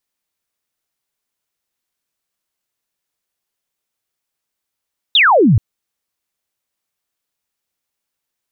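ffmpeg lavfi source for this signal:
ffmpeg -f lavfi -i "aevalsrc='0.447*clip(t/0.002,0,1)*clip((0.43-t)/0.002,0,1)*sin(2*PI*3900*0.43/log(92/3900)*(exp(log(92/3900)*t/0.43)-1))':duration=0.43:sample_rate=44100" out.wav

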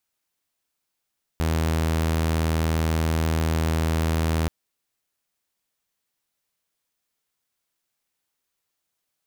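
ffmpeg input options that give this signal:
ffmpeg -f lavfi -i "aevalsrc='0.126*(2*mod(80.5*t,1)-1)':duration=3.08:sample_rate=44100" out.wav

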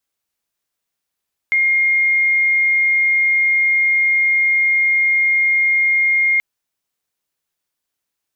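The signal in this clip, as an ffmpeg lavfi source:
ffmpeg -f lavfi -i "aevalsrc='0.251*sin(2*PI*2130*t)':duration=4.88:sample_rate=44100" out.wav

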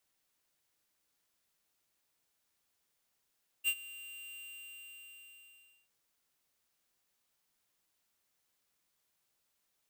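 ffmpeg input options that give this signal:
ffmpeg -f lavfi -i "aevalsrc='0.0376*(2*lt(mod(2780*t,1),0.5)-1)':duration=2.25:sample_rate=44100,afade=type=in:duration=0.04,afade=type=out:start_time=0.04:duration=0.062:silence=0.106,afade=type=out:start_time=0.73:duration=1.52" out.wav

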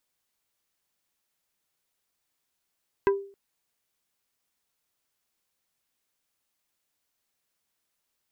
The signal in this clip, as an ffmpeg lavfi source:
ffmpeg -f lavfi -i "aevalsrc='0.158*pow(10,-3*t/0.43)*sin(2*PI*396*t)+0.0891*pow(10,-3*t/0.143)*sin(2*PI*990*t)+0.0501*pow(10,-3*t/0.081)*sin(2*PI*1584*t)+0.0282*pow(10,-3*t/0.062)*sin(2*PI*1980*t)+0.0158*pow(10,-3*t/0.045)*sin(2*PI*2574*t)':duration=0.27:sample_rate=44100" out.wav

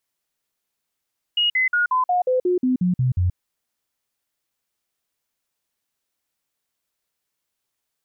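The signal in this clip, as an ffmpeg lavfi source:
ffmpeg -f lavfi -i "aevalsrc='0.158*clip(min(mod(t,0.18),0.13-mod(t,0.18))/0.005,0,1)*sin(2*PI*2880*pow(2,-floor(t/0.18)/2)*mod(t,0.18))':duration=1.98:sample_rate=44100" out.wav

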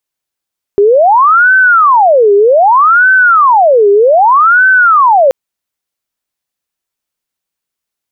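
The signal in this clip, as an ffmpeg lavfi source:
ffmpeg -f lavfi -i "aevalsrc='0.708*sin(2*PI*(965.5*t-564.5/(2*PI*0.64)*sin(2*PI*0.64*t)))':duration=4.53:sample_rate=44100" out.wav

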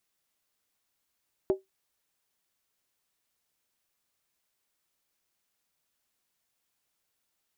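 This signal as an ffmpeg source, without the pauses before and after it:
ffmpeg -f lavfi -i "aevalsrc='0.133*pow(10,-3*t/0.16)*sin(2*PI*383*t)+0.0422*pow(10,-3*t/0.127)*sin(2*PI*610.5*t)+0.0133*pow(10,-3*t/0.109)*sin(2*PI*818.1*t)+0.00422*pow(10,-3*t/0.106)*sin(2*PI*879.4*t)+0.00133*pow(10,-3*t/0.098)*sin(2*PI*1016.1*t)':duration=0.63:sample_rate=44100" out.wav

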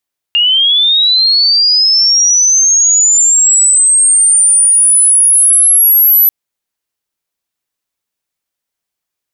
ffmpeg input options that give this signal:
ffmpeg -f lavfi -i "aevalsrc='pow(10,(-6.5+2.5*t/5.94)/20)*sin(2*PI*(2800*t+9200*t*t/(2*5.94)))':duration=5.94:sample_rate=44100" out.wav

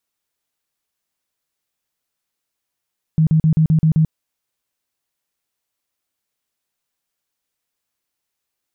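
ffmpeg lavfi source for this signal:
ffmpeg -f lavfi -i "aevalsrc='0.316*sin(2*PI*158*mod(t,0.13))*lt(mod(t,0.13),14/158)':duration=0.91:sample_rate=44100" out.wav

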